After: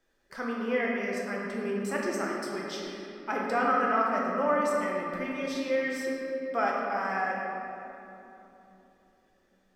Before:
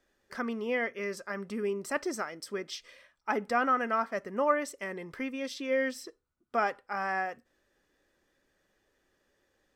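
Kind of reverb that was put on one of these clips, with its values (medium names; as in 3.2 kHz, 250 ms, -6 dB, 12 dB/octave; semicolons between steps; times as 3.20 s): simulated room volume 150 m³, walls hard, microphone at 0.66 m; trim -2.5 dB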